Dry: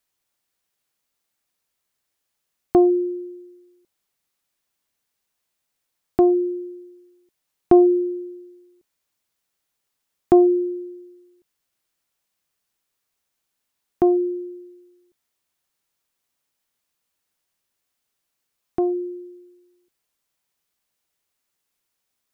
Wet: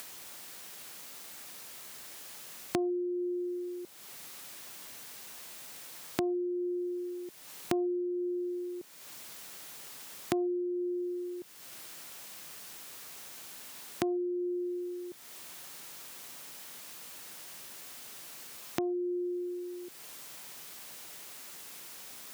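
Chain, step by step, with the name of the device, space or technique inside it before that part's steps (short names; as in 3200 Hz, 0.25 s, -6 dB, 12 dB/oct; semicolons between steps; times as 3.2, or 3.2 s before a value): upward and downward compression (upward compressor, threshold -22 dBFS; compressor 5:1, threshold -31 dBFS, peak gain reduction 19.5 dB); HPF 120 Hz 12 dB/oct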